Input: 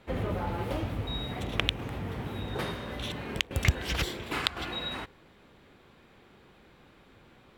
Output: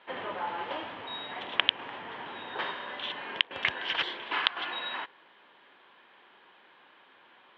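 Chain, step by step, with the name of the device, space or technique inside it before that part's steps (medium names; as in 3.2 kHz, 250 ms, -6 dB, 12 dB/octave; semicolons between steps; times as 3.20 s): phone earpiece (cabinet simulation 460–3700 Hz, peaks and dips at 470 Hz -3 dB, 970 Hz +8 dB, 1.7 kHz +7 dB, 3.1 kHz +8 dB); trim -1 dB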